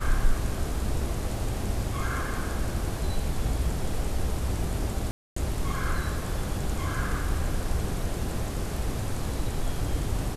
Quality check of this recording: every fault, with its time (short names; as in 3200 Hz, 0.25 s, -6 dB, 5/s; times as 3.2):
5.11–5.36 gap 0.254 s